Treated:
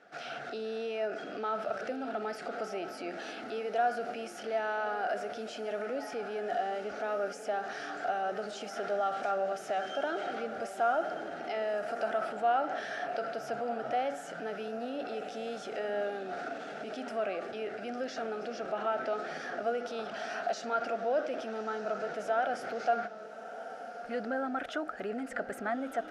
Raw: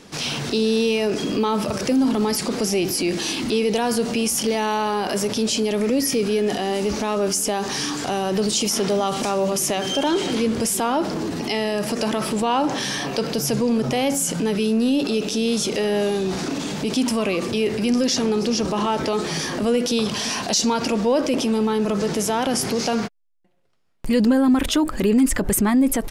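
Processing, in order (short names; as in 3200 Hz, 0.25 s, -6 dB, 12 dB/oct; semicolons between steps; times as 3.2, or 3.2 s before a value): double band-pass 1000 Hz, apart 1 oct; diffused feedback echo 1.266 s, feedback 42%, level -11.5 dB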